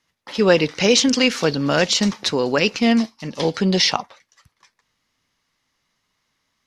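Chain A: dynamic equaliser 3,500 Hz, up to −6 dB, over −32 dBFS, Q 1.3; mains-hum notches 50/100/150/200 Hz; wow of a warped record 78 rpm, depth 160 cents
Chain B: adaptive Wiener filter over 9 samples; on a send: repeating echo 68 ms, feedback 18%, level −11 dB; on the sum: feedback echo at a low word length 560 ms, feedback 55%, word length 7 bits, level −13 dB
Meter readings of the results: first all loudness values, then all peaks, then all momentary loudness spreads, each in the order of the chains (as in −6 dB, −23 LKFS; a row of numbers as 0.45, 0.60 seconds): −19.5, −18.5 LKFS; −3.5, −2.0 dBFS; 7, 18 LU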